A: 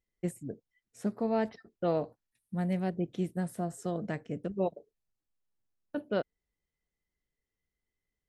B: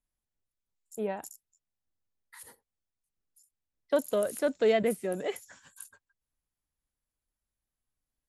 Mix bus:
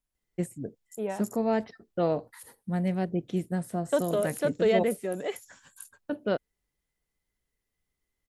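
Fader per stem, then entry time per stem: +3.0 dB, +0.5 dB; 0.15 s, 0.00 s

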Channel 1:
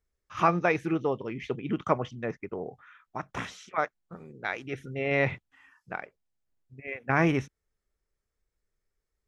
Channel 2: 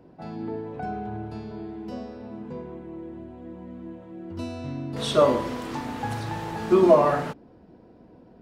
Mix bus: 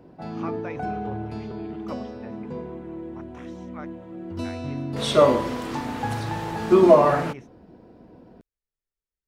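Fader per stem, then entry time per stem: -13.0 dB, +2.5 dB; 0.00 s, 0.00 s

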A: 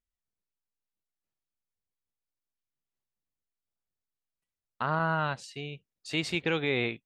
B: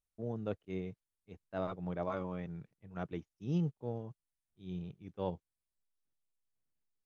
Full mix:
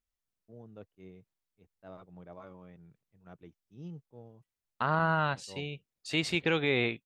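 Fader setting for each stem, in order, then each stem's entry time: +0.5 dB, -11.5 dB; 0.00 s, 0.30 s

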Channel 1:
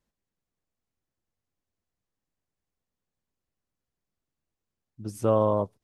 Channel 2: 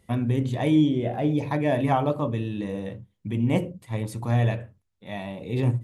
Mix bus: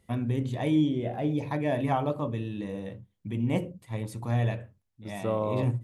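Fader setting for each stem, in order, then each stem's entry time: -6.5 dB, -4.5 dB; 0.00 s, 0.00 s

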